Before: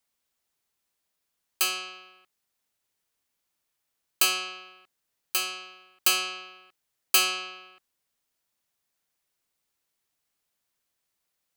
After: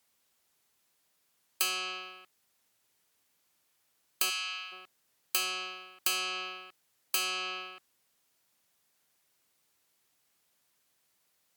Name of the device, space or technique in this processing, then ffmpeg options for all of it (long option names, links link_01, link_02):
podcast mastering chain: -filter_complex "[0:a]asplit=3[link_01][link_02][link_03];[link_01]afade=type=out:start_time=4.29:duration=0.02[link_04];[link_02]highpass=1400,afade=type=in:start_time=4.29:duration=0.02,afade=type=out:start_time=4.71:duration=0.02[link_05];[link_03]afade=type=in:start_time=4.71:duration=0.02[link_06];[link_04][link_05][link_06]amix=inputs=3:normalize=0,highpass=82,acompressor=threshold=-35dB:ratio=2,alimiter=limit=-20.5dB:level=0:latency=1:release=460,volume=7dB" -ar 48000 -c:a libmp3lame -b:a 128k